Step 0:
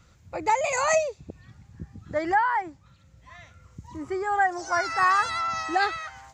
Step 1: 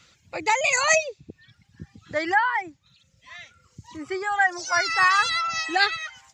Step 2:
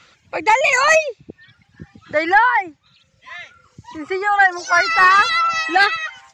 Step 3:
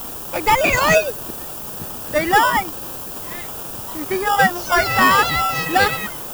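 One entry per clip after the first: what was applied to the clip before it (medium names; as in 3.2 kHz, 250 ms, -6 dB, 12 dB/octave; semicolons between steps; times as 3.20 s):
frequency weighting D; reverb removal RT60 1.1 s; dynamic bell 110 Hz, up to +7 dB, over -53 dBFS, Q 1.2
overdrive pedal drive 10 dB, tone 1.6 kHz, clips at -6 dBFS; trim +6.5 dB
added noise violet -29 dBFS; in parallel at -4.5 dB: sample-and-hold 21×; on the sum: trim -3 dB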